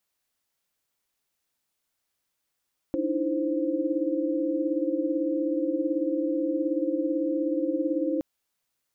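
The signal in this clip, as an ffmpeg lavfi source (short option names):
-f lavfi -i "aevalsrc='0.0335*(sin(2*PI*293.66*t)+sin(2*PI*311.13*t)+sin(2*PI*329.63*t)+sin(2*PI*523.25*t))':d=5.27:s=44100"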